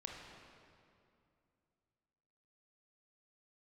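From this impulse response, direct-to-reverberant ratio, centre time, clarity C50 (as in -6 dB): -0.5 dB, 99 ms, 1.0 dB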